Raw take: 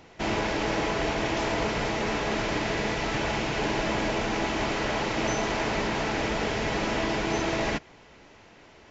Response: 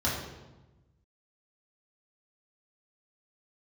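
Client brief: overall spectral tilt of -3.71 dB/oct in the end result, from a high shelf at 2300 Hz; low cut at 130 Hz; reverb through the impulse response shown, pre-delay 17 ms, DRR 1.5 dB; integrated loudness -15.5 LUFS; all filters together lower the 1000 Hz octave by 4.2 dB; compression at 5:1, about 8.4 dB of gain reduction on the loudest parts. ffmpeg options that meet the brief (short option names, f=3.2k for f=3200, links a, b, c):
-filter_complex "[0:a]highpass=130,equalizer=f=1k:t=o:g=-6.5,highshelf=f=2.3k:g=5.5,acompressor=threshold=-34dB:ratio=5,asplit=2[a][b];[1:a]atrim=start_sample=2205,adelay=17[c];[b][c]afir=irnorm=-1:irlink=0,volume=-11.5dB[d];[a][d]amix=inputs=2:normalize=0,volume=17.5dB"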